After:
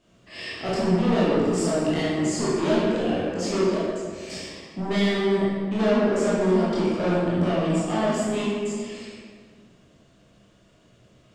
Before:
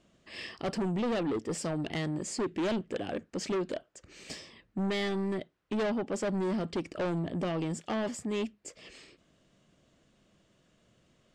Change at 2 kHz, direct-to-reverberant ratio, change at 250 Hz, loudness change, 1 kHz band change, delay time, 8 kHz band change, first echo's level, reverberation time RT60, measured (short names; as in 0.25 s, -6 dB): +8.5 dB, -8.5 dB, +10.0 dB, +10.0 dB, +9.5 dB, none, +7.5 dB, none, 1.8 s